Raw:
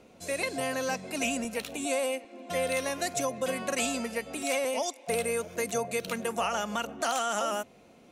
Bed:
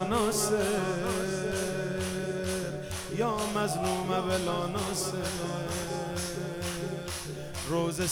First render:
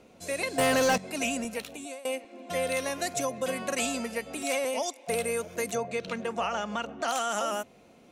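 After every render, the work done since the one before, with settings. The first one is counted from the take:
0:00.58–0:00.98: leveller curve on the samples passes 3
0:01.49–0:02.05: fade out, to −22 dB
0:05.75–0:07.08: high-frequency loss of the air 98 metres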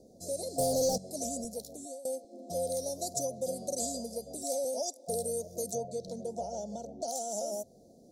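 elliptic band-stop filter 650–4,800 Hz, stop band 40 dB
dynamic equaliser 290 Hz, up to −7 dB, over −46 dBFS, Q 1.1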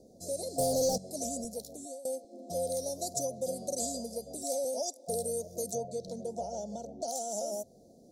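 no processing that can be heard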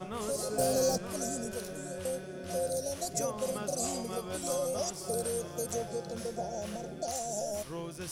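mix in bed −11 dB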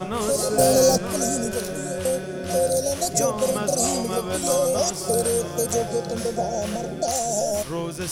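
level +11.5 dB

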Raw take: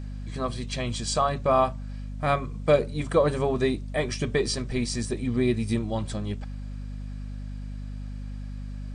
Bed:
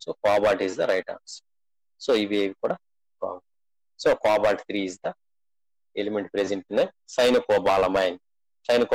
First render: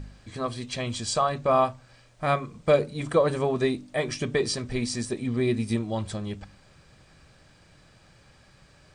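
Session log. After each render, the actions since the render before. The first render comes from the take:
hum removal 50 Hz, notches 6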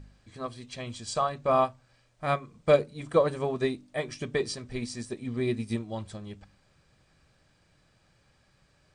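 expander for the loud parts 1.5 to 1, over −34 dBFS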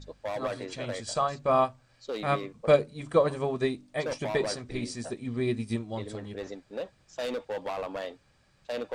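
mix in bed −13.5 dB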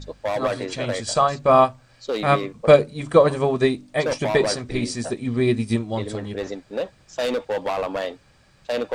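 level +9 dB
brickwall limiter −2 dBFS, peak gain reduction 1.5 dB

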